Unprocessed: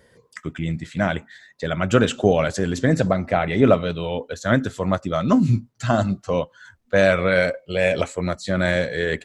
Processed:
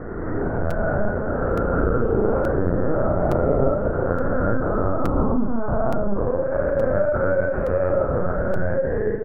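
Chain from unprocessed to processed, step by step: reverse spectral sustain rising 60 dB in 2.36 s; in parallel at -3 dB: hard clipper -15 dBFS, distortion -7 dB; on the sum: Chebyshev band-pass 180–1400 Hz, order 4; on a send: delay 215 ms -21 dB; on the sum: Schroeder reverb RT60 1.9 s, combs from 29 ms, DRR 7.5 dB; dynamic bell 950 Hz, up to -7 dB, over -28 dBFS, Q 1.5; compression 3:1, threshold -18 dBFS, peak gain reduction 9.5 dB; LPC vocoder at 8 kHz pitch kept; doubling 35 ms -4 dB; crackling interface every 0.87 s, samples 256, repeat, from 0.70 s; trim -1.5 dB

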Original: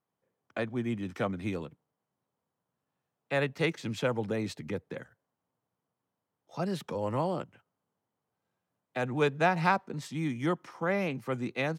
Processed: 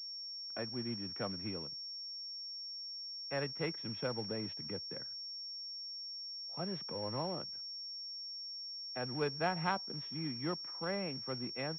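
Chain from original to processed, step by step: short-mantissa float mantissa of 2-bit; class-D stage that switches slowly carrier 5.5 kHz; trim -8.5 dB

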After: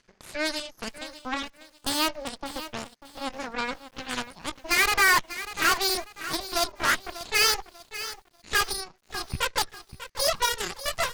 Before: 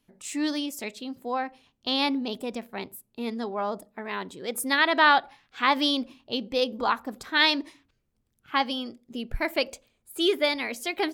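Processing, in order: pitch bend over the whole clip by +9 st starting unshifted; dynamic bell 3 kHz, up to +4 dB, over -43 dBFS, Q 4.4; in parallel at -0.5 dB: upward compressor, threshold -27 dBFS; on the sum: bit crusher 8-bit; rippled Chebyshev low-pass 6.5 kHz, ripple 9 dB; saturation -14 dBFS, distortion -12 dB; Chebyshev shaper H 7 -16 dB, 8 -12 dB, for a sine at -14 dBFS; bit-crushed delay 593 ms, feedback 35%, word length 8-bit, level -13 dB

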